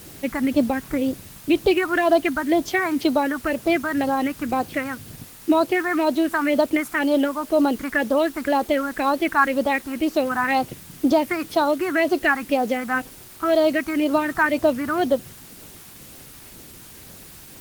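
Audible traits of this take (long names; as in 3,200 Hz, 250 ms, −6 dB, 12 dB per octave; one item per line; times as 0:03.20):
phaser sweep stages 4, 2 Hz, lowest notch 530–2,100 Hz
a quantiser's noise floor 8 bits, dither triangular
Opus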